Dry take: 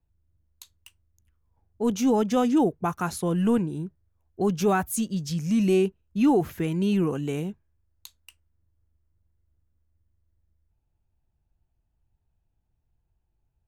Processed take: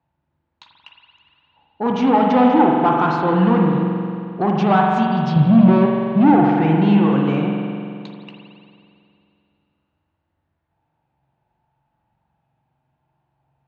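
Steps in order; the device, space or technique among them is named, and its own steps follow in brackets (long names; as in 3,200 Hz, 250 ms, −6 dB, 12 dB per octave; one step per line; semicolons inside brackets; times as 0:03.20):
0:05.36–0:06.34: RIAA equalisation playback
overdrive pedal into a guitar cabinet (mid-hump overdrive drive 23 dB, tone 1,100 Hz, clips at −7 dBFS; loudspeaker in its box 82–4,300 Hz, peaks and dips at 100 Hz −7 dB, 140 Hz +9 dB, 420 Hz −9 dB, 870 Hz +6 dB)
spring reverb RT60 2.5 s, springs 44 ms, chirp 40 ms, DRR −0.5 dB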